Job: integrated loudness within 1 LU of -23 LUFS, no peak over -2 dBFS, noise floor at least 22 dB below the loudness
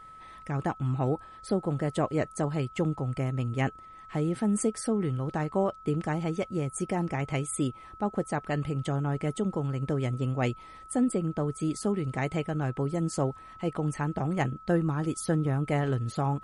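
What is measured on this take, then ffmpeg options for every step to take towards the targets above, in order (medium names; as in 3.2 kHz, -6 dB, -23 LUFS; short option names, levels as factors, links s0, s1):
steady tone 1.3 kHz; tone level -46 dBFS; loudness -30.0 LUFS; peak level -14.0 dBFS; loudness target -23.0 LUFS
-> -af "bandreject=f=1300:w=30"
-af "volume=2.24"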